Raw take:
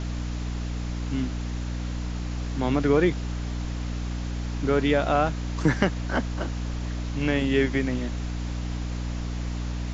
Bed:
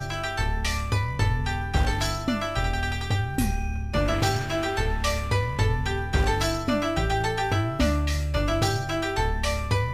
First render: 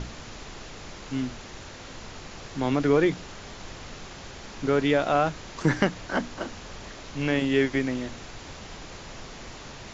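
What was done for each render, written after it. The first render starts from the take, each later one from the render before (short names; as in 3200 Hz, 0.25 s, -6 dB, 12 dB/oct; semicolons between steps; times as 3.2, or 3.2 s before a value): notches 60/120/180/240/300 Hz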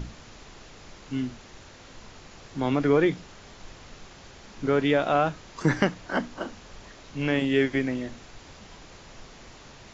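noise print and reduce 6 dB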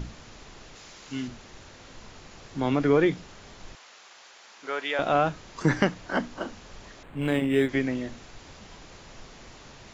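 0.75–1.28 tilt +2 dB/oct; 3.75–4.99 HPF 790 Hz; 7.03–7.69 decimation joined by straight lines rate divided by 8×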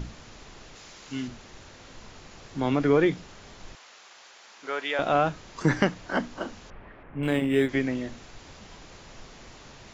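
6.7–7.23 LPF 2300 Hz 24 dB/oct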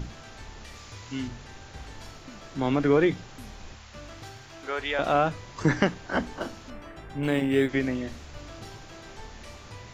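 add bed -20.5 dB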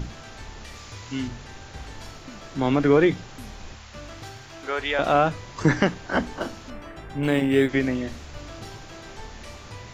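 gain +3.5 dB; limiter -3 dBFS, peak gain reduction 2 dB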